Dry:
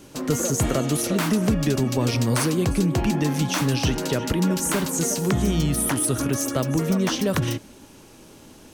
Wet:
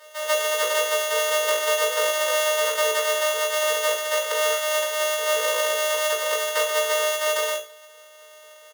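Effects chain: sorted samples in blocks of 256 samples; Chebyshev high-pass 250 Hz, order 8; comb 1.1 ms, depth 93%; formant-preserving pitch shift +10 st; flutter echo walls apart 3.1 m, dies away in 0.34 s

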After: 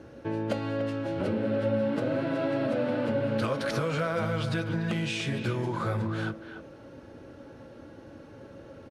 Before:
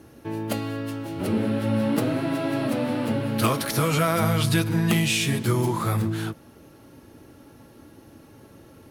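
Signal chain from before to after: compression 6:1, threshold -27 dBFS, peak gain reduction 10.5 dB; distance through air 100 m; small resonant body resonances 540/1500 Hz, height 10 dB, ringing for 35 ms; speakerphone echo 290 ms, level -9 dB

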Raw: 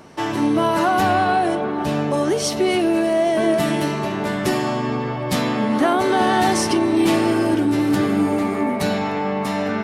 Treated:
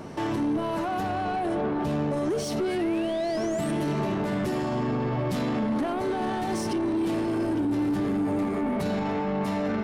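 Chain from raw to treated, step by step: gain riding 0.5 s; painted sound rise, 2.58–3.72 s, 1.3–9.2 kHz -33 dBFS; peak limiter -17 dBFS, peak gain reduction 10 dB; saturation -23.5 dBFS, distortion -14 dB; tilt shelf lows +4 dB, about 790 Hz; trim -1 dB

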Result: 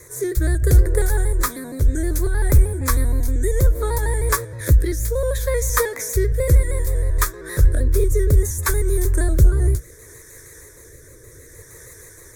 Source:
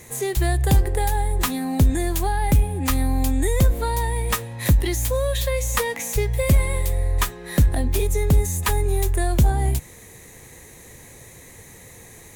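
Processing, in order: pitch shift switched off and on -1.5 st, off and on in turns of 78 ms; static phaser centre 780 Hz, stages 6; rotary cabinet horn 0.65 Hz; trim +6 dB

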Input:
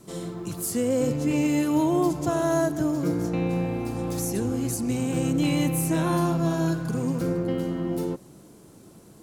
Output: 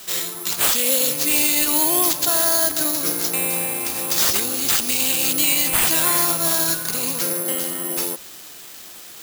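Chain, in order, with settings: frequency weighting ITU-R 468; peak limiter -18.5 dBFS, peak gain reduction 8.5 dB; careless resampling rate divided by 4×, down none, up zero stuff; trim +5 dB

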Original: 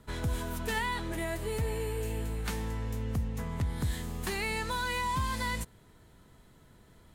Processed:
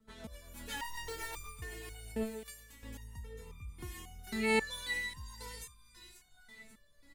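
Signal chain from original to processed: 0.76–1.48 s: one-bit comparator; 2.23–2.83 s: pre-emphasis filter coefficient 0.8; on a send: delay 496 ms -16 dB; on the sum: rotary cabinet horn 8 Hz, later 1.2 Hz, at 2.89 s; feedback echo behind a high-pass 538 ms, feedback 40%, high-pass 1.6 kHz, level -12 dB; level rider gain up to 8 dB; 3.43–4.19 s: graphic EQ with 31 bands 630 Hz -10 dB, 1.6 kHz -12 dB, 2.5 kHz +6 dB, 4 kHz -10 dB, 8 kHz -5 dB; resonator arpeggio 3.7 Hz 220–1200 Hz; trim +4 dB

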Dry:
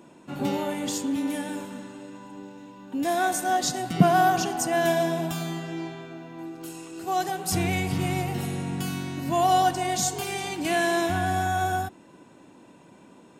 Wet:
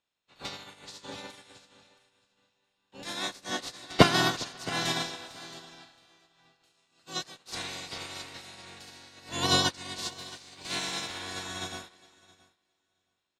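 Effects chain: spectral peaks clipped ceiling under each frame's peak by 26 dB; low-pass 7.1 kHz 12 dB/octave; peaking EQ 4 kHz +9 dB 0.91 oct; echo from a far wall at 70 m, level -12 dB; dynamic bell 3 kHz, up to -5 dB, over -37 dBFS, Q 2.9; feedback delay 671 ms, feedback 32%, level -9 dB; 10.08–11.21 s: modulation noise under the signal 33 dB; upward expansion 2.5:1, over -39 dBFS; trim +1.5 dB

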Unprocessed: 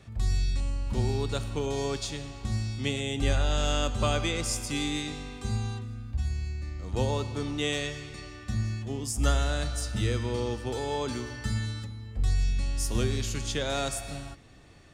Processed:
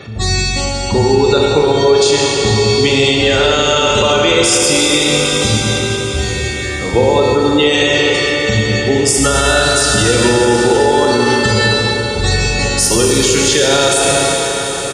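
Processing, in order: Bessel high-pass 210 Hz, order 2; compression, threshold -33 dBFS, peak gain reduction 9 dB; spectral gate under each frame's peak -20 dB strong; band-stop 900 Hz, Q 25; comb 2.2 ms, depth 33%; echo that smears into a reverb 858 ms, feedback 44%, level -12.5 dB; Schroeder reverb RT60 3.8 s, combs from 26 ms, DRR -1.5 dB; loudness maximiser +25 dB; trim -1 dB

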